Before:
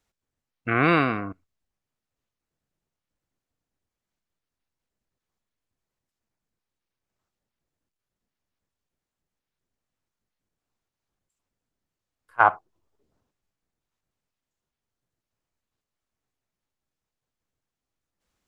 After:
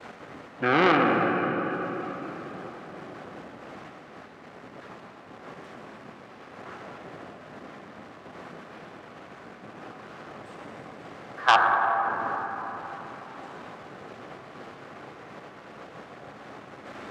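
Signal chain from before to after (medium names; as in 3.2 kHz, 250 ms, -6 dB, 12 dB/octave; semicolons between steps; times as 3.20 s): jump at every zero crossing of -29.5 dBFS; high-pass 150 Hz 12 dB/octave; expander -34 dBFS; low-pass 1.1 kHz 12 dB/octave; tilt EQ +2 dB/octave; band-stop 850 Hz, Q 12; tape speed +8%; on a send at -1 dB: reverberation RT60 4.1 s, pre-delay 61 ms; on the sum: transformer saturation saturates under 2 kHz; trim +5 dB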